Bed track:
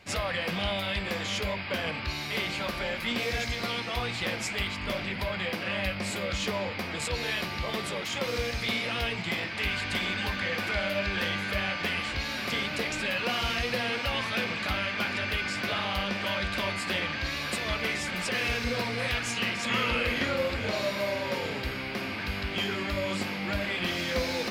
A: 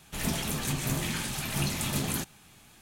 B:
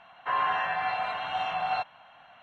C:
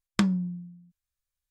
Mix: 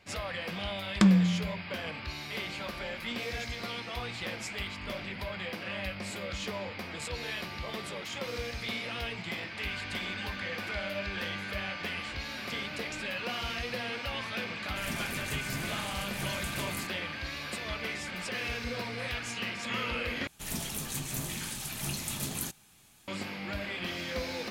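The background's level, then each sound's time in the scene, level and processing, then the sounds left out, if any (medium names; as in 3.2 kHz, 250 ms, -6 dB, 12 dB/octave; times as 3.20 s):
bed track -6 dB
0.82 s: add C -7 dB + loudness maximiser +12 dB
14.63 s: add A -8 dB
20.27 s: replace with A -7.5 dB + treble shelf 3.7 kHz +6.5 dB
not used: B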